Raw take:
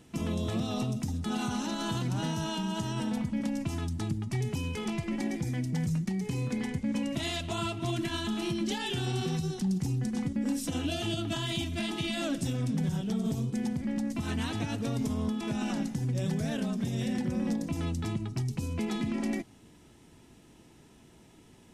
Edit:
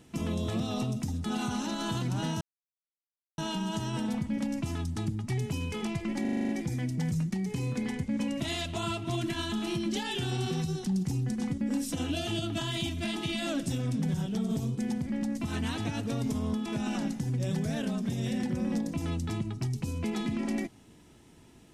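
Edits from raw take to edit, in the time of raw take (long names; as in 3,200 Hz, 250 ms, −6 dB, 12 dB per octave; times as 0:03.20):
0:02.41: splice in silence 0.97 s
0:05.24: stutter 0.04 s, 8 plays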